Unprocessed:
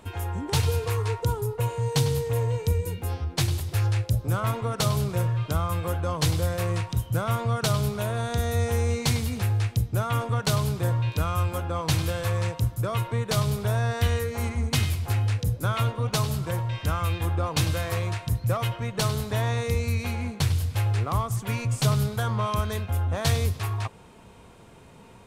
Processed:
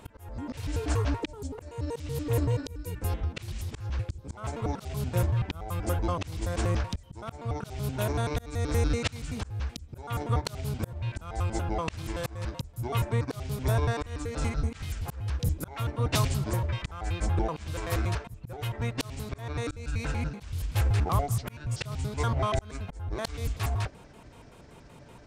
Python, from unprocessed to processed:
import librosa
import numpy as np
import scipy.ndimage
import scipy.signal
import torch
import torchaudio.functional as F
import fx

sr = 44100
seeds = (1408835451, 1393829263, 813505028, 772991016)

y = fx.pitch_trill(x, sr, semitones=-8.0, every_ms=95)
y = fx.auto_swell(y, sr, attack_ms=391.0)